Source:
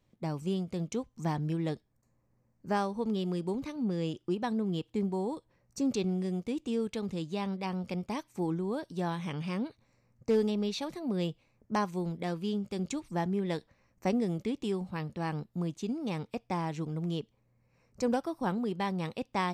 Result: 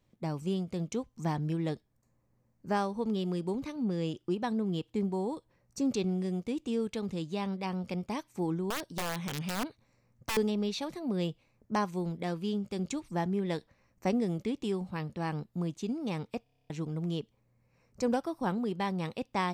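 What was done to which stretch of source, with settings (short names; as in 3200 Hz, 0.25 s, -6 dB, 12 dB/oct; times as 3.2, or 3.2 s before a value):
8.7–10.37 wrapped overs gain 27 dB
16.43 stutter in place 0.03 s, 9 plays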